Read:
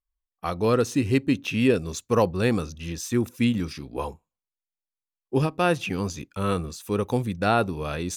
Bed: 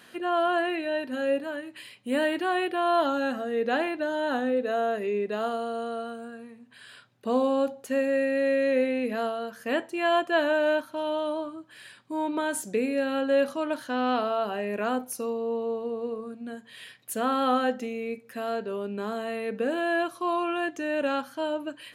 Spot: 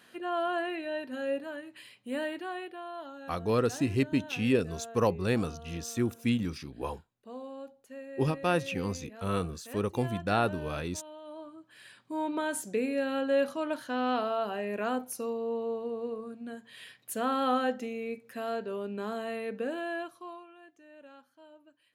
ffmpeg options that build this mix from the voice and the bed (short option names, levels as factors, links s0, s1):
-filter_complex "[0:a]adelay=2850,volume=0.531[s0];[1:a]volume=2.82,afade=t=out:st=1.92:d=1:silence=0.237137,afade=t=in:st=11.22:d=0.81:silence=0.177828,afade=t=out:st=19.34:d=1.13:silence=0.0794328[s1];[s0][s1]amix=inputs=2:normalize=0"